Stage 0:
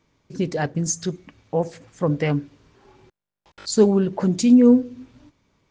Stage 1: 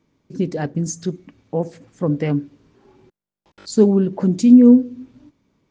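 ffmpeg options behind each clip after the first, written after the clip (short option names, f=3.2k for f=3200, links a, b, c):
-af "equalizer=f=250:w=0.72:g=9,volume=-4.5dB"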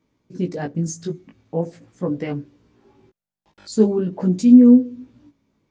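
-af "flanger=delay=16:depth=2.9:speed=0.43"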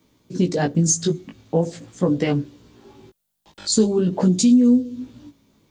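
-filter_complex "[0:a]acrossover=split=100|3300[a][b][c];[b]acompressor=threshold=-23dB:ratio=4[d];[a][d][c]amix=inputs=3:normalize=0,aexciter=amount=2.7:drive=2.3:freq=3.1k,volume=7.5dB"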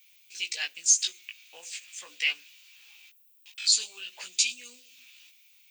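-filter_complex "[0:a]highpass=f=2.5k:t=q:w=6.5,acrossover=split=6500[a][b];[b]acompressor=threshold=-36dB:ratio=4:attack=1:release=60[c];[a][c]amix=inputs=2:normalize=0,aemphasis=mode=production:type=bsi,volume=-5dB"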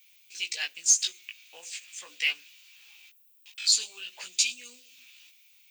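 -af "acrusher=bits=7:mode=log:mix=0:aa=0.000001"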